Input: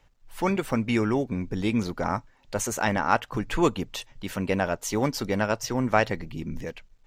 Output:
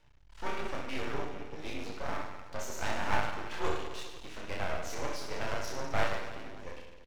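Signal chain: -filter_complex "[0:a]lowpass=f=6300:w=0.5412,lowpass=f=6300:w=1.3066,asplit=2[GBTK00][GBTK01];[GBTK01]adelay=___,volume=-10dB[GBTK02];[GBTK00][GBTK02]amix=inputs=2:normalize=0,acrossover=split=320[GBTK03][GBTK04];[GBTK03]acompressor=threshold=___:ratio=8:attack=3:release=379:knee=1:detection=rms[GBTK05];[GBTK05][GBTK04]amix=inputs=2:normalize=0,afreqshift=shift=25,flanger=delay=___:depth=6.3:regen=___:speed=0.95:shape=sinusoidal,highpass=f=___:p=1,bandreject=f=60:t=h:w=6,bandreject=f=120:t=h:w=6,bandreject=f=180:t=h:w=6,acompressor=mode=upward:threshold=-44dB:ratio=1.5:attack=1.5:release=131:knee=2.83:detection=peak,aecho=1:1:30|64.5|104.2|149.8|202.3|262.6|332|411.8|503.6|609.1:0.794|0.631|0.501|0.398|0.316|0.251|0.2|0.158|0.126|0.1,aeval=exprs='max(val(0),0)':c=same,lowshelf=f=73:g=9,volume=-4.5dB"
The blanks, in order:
31, -41dB, 6.7, 43, 44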